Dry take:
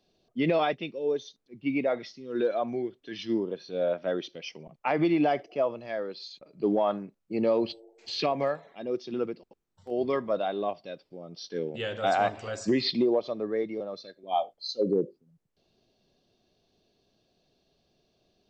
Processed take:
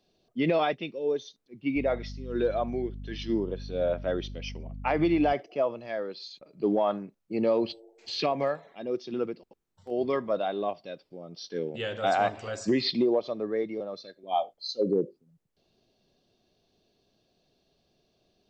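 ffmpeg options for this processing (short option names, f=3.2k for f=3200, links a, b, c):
-filter_complex "[0:a]asettb=1/sr,asplit=3[a][b][c];[a]atrim=end=1.764[d];[b]atrim=start=1.76:end=5.33,asetpts=PTS-STARTPTS,afade=t=in:d=0.004:c=qsin,afade=t=out:st=3.566:d=0.004:c=qsin,aeval=exprs='val(0)+0.0126*(sin(2*PI*50*n/s)+sin(2*PI*2*50*n/s)/2+sin(2*PI*3*50*n/s)/3+sin(2*PI*4*50*n/s)/4+sin(2*PI*5*50*n/s)/5)':c=same[e];[c]atrim=start=5.326[f];[d][e]acrossfade=d=0.004:c1=hsin:c2=qsin[g];[g][f]acrossfade=d=0.004:c1=qsin:c2=hsin"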